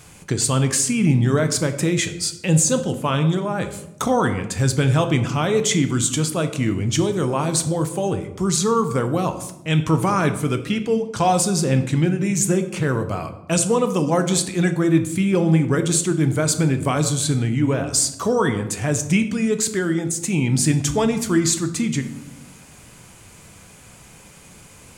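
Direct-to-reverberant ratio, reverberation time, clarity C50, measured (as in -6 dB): 7.5 dB, 0.85 s, 11.5 dB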